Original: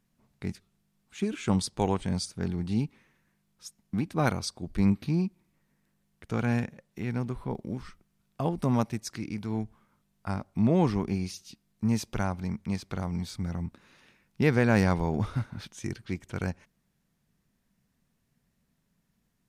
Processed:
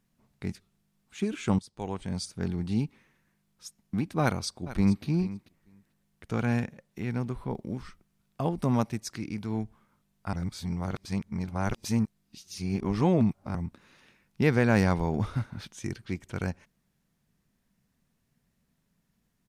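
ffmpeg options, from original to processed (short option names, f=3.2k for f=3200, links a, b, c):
-filter_complex "[0:a]asplit=2[a][b];[b]afade=t=in:st=4.22:d=0.01,afade=t=out:st=5.04:d=0.01,aecho=0:1:440|880:0.177828|0.0177828[c];[a][c]amix=inputs=2:normalize=0,asplit=4[d][e][f][g];[d]atrim=end=1.59,asetpts=PTS-STARTPTS,afade=t=out:st=1.586:d=0.004:c=hsin:silence=0.0944061[h];[e]atrim=start=1.59:end=10.332,asetpts=PTS-STARTPTS,afade=t=in:d=0.84:silence=0.0944061[i];[f]atrim=start=10.328:end=13.552,asetpts=PTS-STARTPTS,areverse[j];[g]atrim=start=13.548[k];[h][i]concat=n=2:v=0:a=1[l];[l][j]acrossfade=d=0.004:c1=hsin:c2=hsin[m];[m][k]acrossfade=d=0.004:c1=hsin:c2=hsin"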